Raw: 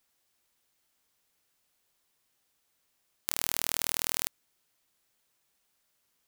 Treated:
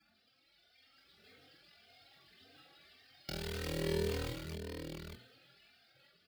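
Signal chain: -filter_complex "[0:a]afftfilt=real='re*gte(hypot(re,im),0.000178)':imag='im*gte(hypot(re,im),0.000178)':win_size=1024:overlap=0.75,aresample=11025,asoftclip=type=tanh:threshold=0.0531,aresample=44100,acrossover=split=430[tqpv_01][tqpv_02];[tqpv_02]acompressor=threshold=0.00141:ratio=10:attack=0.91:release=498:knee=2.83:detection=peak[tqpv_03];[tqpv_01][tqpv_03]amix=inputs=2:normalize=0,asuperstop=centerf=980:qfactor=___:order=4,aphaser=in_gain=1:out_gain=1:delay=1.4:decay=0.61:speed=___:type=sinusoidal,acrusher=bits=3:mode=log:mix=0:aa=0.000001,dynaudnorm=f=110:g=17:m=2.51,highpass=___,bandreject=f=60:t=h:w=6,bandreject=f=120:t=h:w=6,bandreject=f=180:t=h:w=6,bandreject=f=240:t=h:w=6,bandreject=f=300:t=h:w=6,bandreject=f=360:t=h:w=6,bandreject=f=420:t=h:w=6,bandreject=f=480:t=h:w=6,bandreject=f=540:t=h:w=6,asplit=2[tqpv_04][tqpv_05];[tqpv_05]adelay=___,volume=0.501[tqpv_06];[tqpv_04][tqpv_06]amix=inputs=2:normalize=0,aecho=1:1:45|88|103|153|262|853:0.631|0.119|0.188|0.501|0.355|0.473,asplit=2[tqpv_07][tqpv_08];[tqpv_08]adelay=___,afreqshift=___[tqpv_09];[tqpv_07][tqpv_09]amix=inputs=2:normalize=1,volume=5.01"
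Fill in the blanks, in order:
2.6, 0.77, 84, 23, 3.1, 1.8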